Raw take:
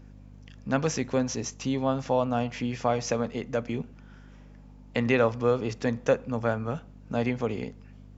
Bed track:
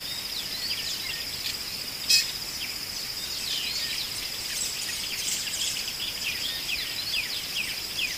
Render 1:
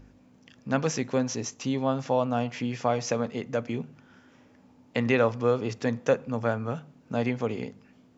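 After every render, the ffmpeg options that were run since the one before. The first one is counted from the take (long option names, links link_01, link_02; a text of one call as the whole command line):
ffmpeg -i in.wav -af "bandreject=frequency=50:width_type=h:width=4,bandreject=frequency=100:width_type=h:width=4,bandreject=frequency=150:width_type=h:width=4,bandreject=frequency=200:width_type=h:width=4" out.wav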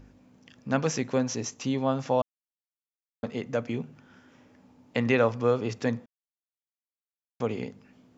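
ffmpeg -i in.wav -filter_complex "[0:a]asplit=5[link_01][link_02][link_03][link_04][link_05];[link_01]atrim=end=2.22,asetpts=PTS-STARTPTS,afade=type=out:start_time=2.216:duration=0.004:curve=hsin[link_06];[link_02]atrim=start=2.22:end=3.23,asetpts=PTS-STARTPTS,volume=0[link_07];[link_03]atrim=start=3.23:end=6.06,asetpts=PTS-STARTPTS,afade=type=in:duration=0.004:curve=hsin,afade=type=out:start_time=2.826:duration=0.004:curve=hsin[link_08];[link_04]atrim=start=6.06:end=7.4,asetpts=PTS-STARTPTS,volume=0[link_09];[link_05]atrim=start=7.4,asetpts=PTS-STARTPTS,afade=type=in:duration=0.004:curve=hsin[link_10];[link_06][link_07][link_08][link_09][link_10]concat=n=5:v=0:a=1" out.wav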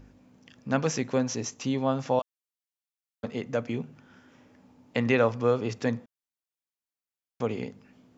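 ffmpeg -i in.wav -filter_complex "[0:a]asettb=1/sr,asplit=3[link_01][link_02][link_03];[link_01]atrim=end=2.194[link_04];[link_02]atrim=start=2.19:end=3.24,asetpts=PTS-STARTPTS,afade=type=in:duration=0.004:curve=qsin,afade=type=out:start_time=1.046:duration=0.004:curve=qsin,highpass=frequency=1300:poles=1[link_05];[link_03]atrim=start=3.236[link_06];[link_04][link_05]acrossfade=duration=0.004:curve1=hsin:curve2=qsin[link_07];[link_07][link_06]acrossfade=duration=0.004:curve1=qsin:curve2=hsin" out.wav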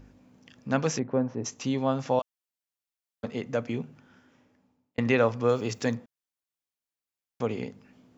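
ffmpeg -i in.wav -filter_complex "[0:a]asplit=3[link_01][link_02][link_03];[link_01]afade=type=out:start_time=0.98:duration=0.02[link_04];[link_02]lowpass=1100,afade=type=in:start_time=0.98:duration=0.02,afade=type=out:start_time=1.44:duration=0.02[link_05];[link_03]afade=type=in:start_time=1.44:duration=0.02[link_06];[link_04][link_05][link_06]amix=inputs=3:normalize=0,asettb=1/sr,asplit=3[link_07][link_08][link_09];[link_07]atrim=end=5.494[link_10];[link_08]atrim=start=5.49:end=5.95,asetpts=PTS-STARTPTS,afade=type=in:duration=0.004:curve=qsin,afade=type=out:start_time=0.456:duration=0.004:curve=qsin,aemphasis=mode=production:type=50fm[link_11];[link_09]atrim=start=5.946[link_12];[link_10][link_11]acrossfade=duration=0.004:curve1=hsin:curve2=qsin[link_13];[link_13][link_12]acrossfade=duration=0.004:curve1=qsin:curve2=hsin,asplit=2[link_14][link_15];[link_14]atrim=end=4.98,asetpts=PTS-STARTPTS,afade=type=out:start_time=3.8:duration=1.18[link_16];[link_15]atrim=start=4.98,asetpts=PTS-STARTPTS,afade=type=in:duration=0.004:curve=hsin[link_17];[link_16][link_17]concat=n=2:v=0:a=1" out.wav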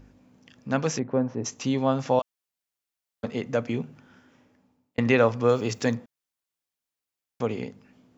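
ffmpeg -i in.wav -af "dynaudnorm=framelen=460:gausssize=5:maxgain=3dB" out.wav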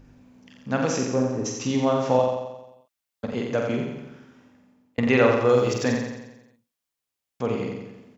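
ffmpeg -i in.wav -filter_complex "[0:a]asplit=2[link_01][link_02];[link_02]adelay=47,volume=-5dB[link_03];[link_01][link_03]amix=inputs=2:normalize=0,aecho=1:1:88|176|264|352|440|528|616:0.562|0.304|0.164|0.0885|0.0478|0.0258|0.0139" out.wav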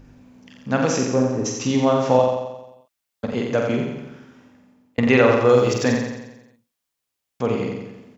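ffmpeg -i in.wav -af "volume=4dB,alimiter=limit=-3dB:level=0:latency=1" out.wav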